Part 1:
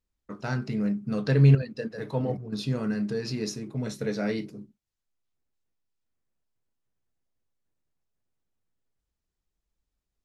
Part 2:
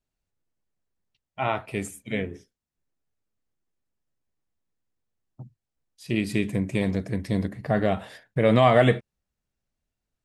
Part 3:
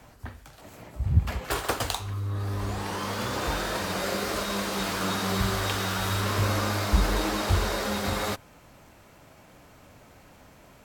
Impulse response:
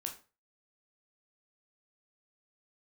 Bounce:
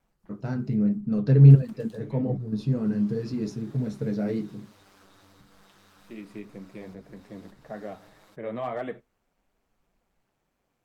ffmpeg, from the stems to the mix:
-filter_complex "[0:a]tiltshelf=f=650:g=8.5,volume=1.06,asplit=2[s0][s1];[1:a]acrossover=split=190 2000:gain=0.224 1 0.251[s2][s3][s4];[s2][s3][s4]amix=inputs=3:normalize=0,asoftclip=type=hard:threshold=0.355,volume=0.316,asplit=2[s5][s6];[s6]volume=0.0841[s7];[2:a]acompressor=threshold=0.0316:ratio=6,aeval=exprs='val(0)*sin(2*PI*98*n/s)':c=same,volume=0.141[s8];[s1]apad=whole_len=451606[s9];[s5][s9]sidechaincompress=threshold=0.0447:ratio=8:attack=16:release=511[s10];[3:a]atrim=start_sample=2205[s11];[s7][s11]afir=irnorm=-1:irlink=0[s12];[s0][s10][s8][s12]amix=inputs=4:normalize=0,flanger=delay=3.5:depth=6.4:regen=-45:speed=1.8:shape=triangular"

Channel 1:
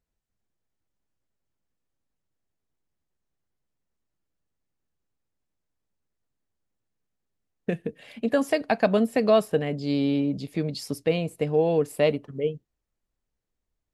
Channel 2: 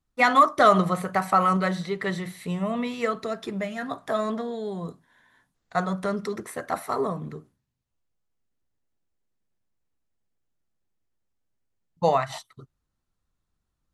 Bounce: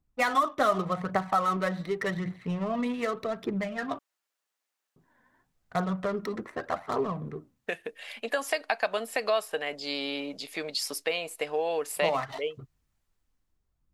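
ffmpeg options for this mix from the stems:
-filter_complex "[0:a]highpass=870,dynaudnorm=f=120:g=13:m=3.35,volume=0.708[s0];[1:a]adynamicsmooth=sensitivity=6:basefreq=1200,aphaser=in_gain=1:out_gain=1:delay=4.1:decay=0.41:speed=0.86:type=triangular,volume=1,asplit=3[s1][s2][s3];[s1]atrim=end=3.99,asetpts=PTS-STARTPTS,afade=t=out:st=3.986:d=0.004:c=hsin[s4];[s2]atrim=start=3.99:end=4.96,asetpts=PTS-STARTPTS,volume=0[s5];[s3]atrim=start=4.96,asetpts=PTS-STARTPTS,afade=t=in:d=0.004:c=hsin[s6];[s4][s5][s6]concat=n=3:v=0:a=1[s7];[s0][s7]amix=inputs=2:normalize=0,acompressor=threshold=0.0398:ratio=2"

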